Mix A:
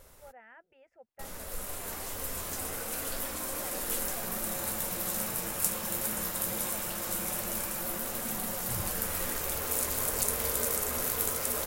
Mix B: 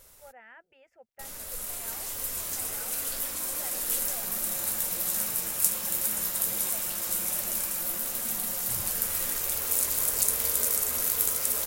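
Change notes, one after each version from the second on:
background −5.0 dB
master: add high-shelf EQ 2,400 Hz +10.5 dB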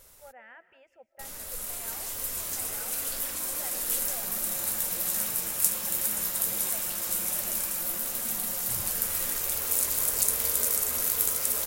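second sound: unmuted
reverb: on, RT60 0.40 s

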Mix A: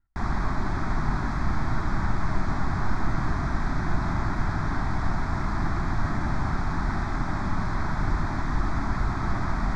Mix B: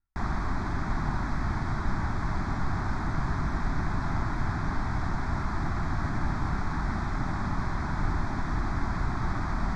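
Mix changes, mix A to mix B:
speech −9.0 dB
reverb: off

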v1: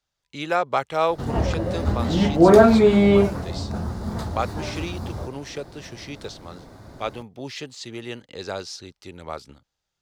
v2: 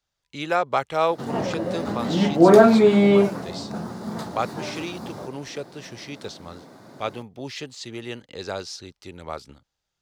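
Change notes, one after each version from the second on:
background: add high-pass filter 150 Hz 24 dB per octave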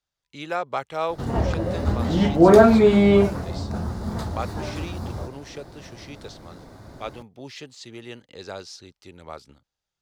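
speech −5.0 dB
background: remove high-pass filter 150 Hz 24 dB per octave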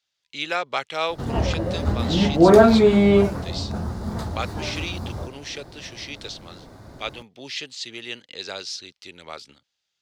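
speech: add meter weighting curve D

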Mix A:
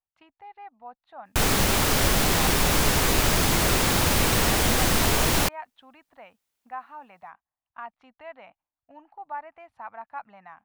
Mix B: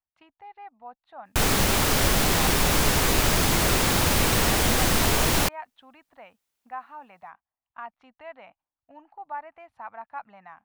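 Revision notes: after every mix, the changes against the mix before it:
nothing changed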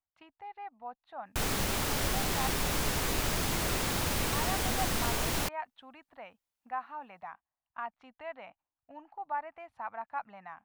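background −9.5 dB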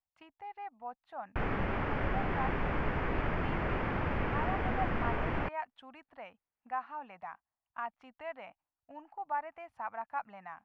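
background: add low-pass filter 2,200 Hz 24 dB per octave
master: add parametric band 3,900 Hz −7.5 dB 0.26 octaves

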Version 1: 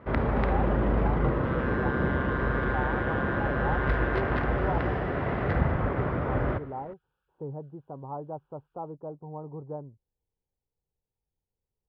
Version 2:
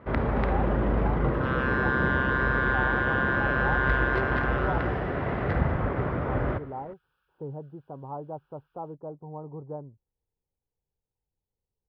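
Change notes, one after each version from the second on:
second sound +8.0 dB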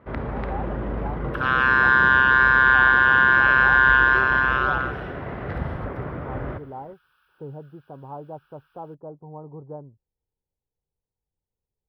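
first sound −3.5 dB
second sound +11.5 dB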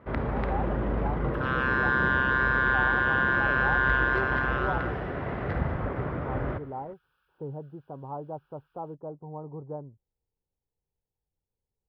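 second sound −9.0 dB

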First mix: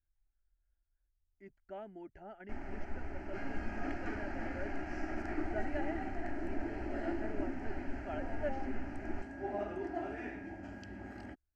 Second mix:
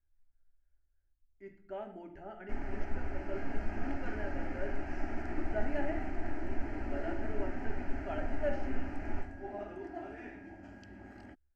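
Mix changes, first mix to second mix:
speech: send on
first sound: send +8.0 dB
second sound −4.0 dB

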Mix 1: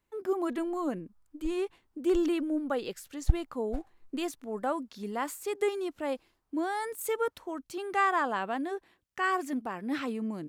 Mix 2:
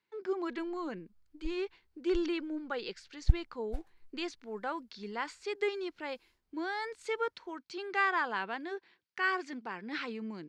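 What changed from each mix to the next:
speech: add loudspeaker in its box 220–5,500 Hz, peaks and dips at 270 Hz −10 dB, 600 Hz −7 dB, 950 Hz +8 dB, 1,500 Hz +6 dB, 2,200 Hz +5 dB, 4,500 Hz +6 dB
master: add parametric band 970 Hz −9.5 dB 1.4 octaves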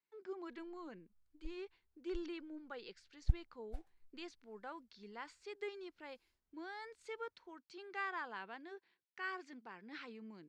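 speech −12.0 dB
background −7.5 dB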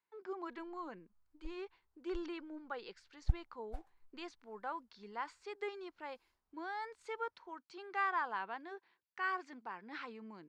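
master: add parametric band 970 Hz +9.5 dB 1.4 octaves

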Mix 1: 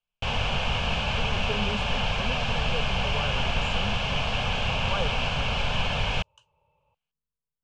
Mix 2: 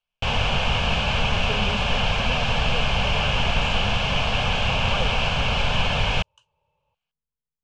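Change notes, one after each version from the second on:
first sound +4.5 dB
second sound −3.5 dB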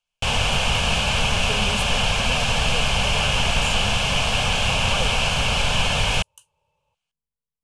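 speech: remove low-pass filter 7,400 Hz
master: remove high-frequency loss of the air 160 metres

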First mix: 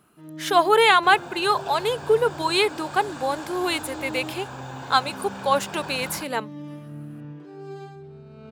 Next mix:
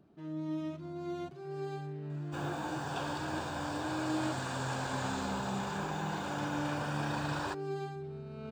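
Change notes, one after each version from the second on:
speech: muted
second sound: entry +1.30 s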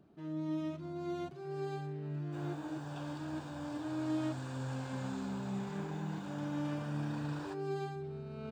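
second sound −11.0 dB

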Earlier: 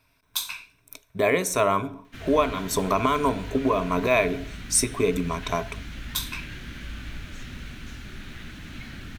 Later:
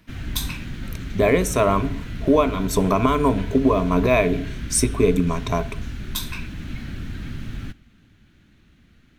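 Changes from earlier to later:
background: entry −2.05 s
master: add low-shelf EQ 430 Hz +9.5 dB

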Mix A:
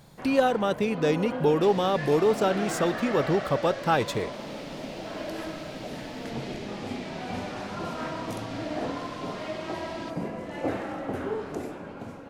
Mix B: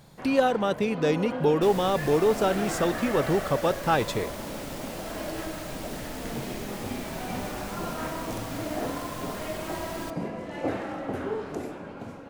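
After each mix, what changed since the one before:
second sound: remove flat-topped band-pass 3,100 Hz, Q 0.92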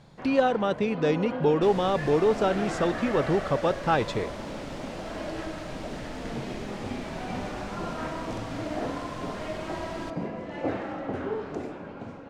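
master: add high-frequency loss of the air 89 metres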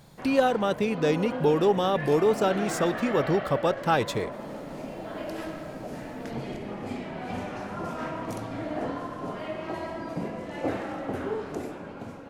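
second sound: muted
master: remove high-frequency loss of the air 89 metres

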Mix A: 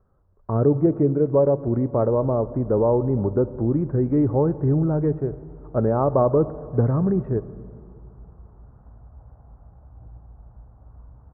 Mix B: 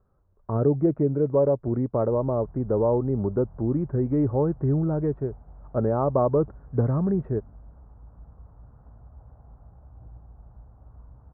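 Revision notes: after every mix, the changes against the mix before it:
reverb: off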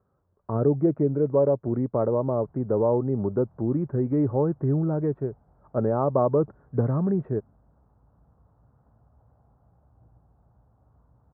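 background −6.5 dB
master: add high-pass filter 97 Hz 12 dB per octave

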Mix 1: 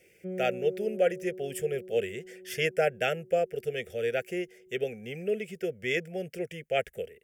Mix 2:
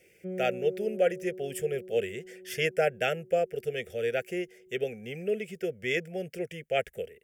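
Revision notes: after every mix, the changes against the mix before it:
nothing changed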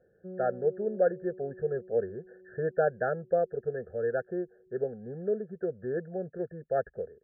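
background −5.5 dB
master: add linear-phase brick-wall low-pass 1,800 Hz

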